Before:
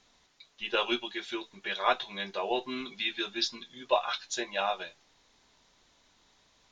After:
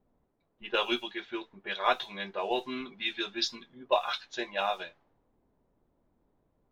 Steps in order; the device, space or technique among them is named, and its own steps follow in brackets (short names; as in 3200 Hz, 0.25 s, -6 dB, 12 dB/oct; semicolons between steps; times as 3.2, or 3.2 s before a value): cassette deck with a dynamic noise filter (white noise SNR 31 dB; low-pass opened by the level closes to 460 Hz, open at -26.5 dBFS)